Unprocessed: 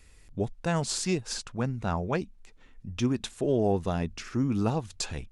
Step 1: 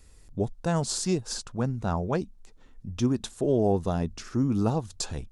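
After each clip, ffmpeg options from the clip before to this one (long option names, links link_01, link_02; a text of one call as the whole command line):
ffmpeg -i in.wav -af "equalizer=frequency=2300:width_type=o:width=1.1:gain=-9,volume=2dB" out.wav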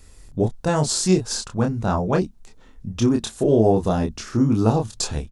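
ffmpeg -i in.wav -filter_complex "[0:a]asplit=2[link_01][link_02];[link_02]adelay=27,volume=-4dB[link_03];[link_01][link_03]amix=inputs=2:normalize=0,volume=6dB" out.wav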